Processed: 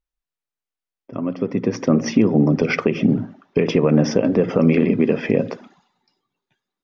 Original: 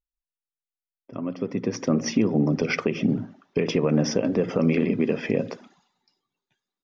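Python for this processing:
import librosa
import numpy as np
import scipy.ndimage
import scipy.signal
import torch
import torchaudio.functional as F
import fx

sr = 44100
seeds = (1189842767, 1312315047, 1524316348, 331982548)

y = fx.high_shelf(x, sr, hz=4900.0, db=-10.5)
y = F.gain(torch.from_numpy(y), 6.0).numpy()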